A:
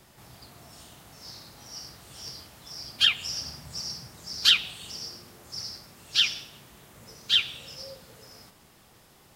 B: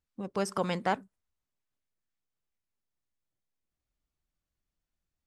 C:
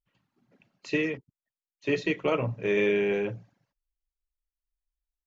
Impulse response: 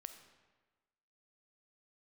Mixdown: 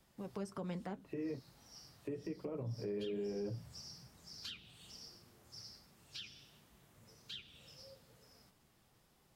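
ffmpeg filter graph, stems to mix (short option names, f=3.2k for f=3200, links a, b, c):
-filter_complex "[0:a]lowshelf=f=230:g=5,volume=-11.5dB[a];[1:a]volume=-3dB[b];[2:a]lowpass=1.2k,acompressor=threshold=-28dB:ratio=3,adelay=200,volume=0.5dB[c];[a][b][c]amix=inputs=3:normalize=0,acrossover=split=430[d][e];[e]acompressor=threshold=-43dB:ratio=5[f];[d][f]amix=inputs=2:normalize=0,flanger=delay=3.6:depth=6.2:regen=-52:speed=1.2:shape=triangular,alimiter=level_in=8.5dB:limit=-24dB:level=0:latency=1:release=187,volume=-8.5dB"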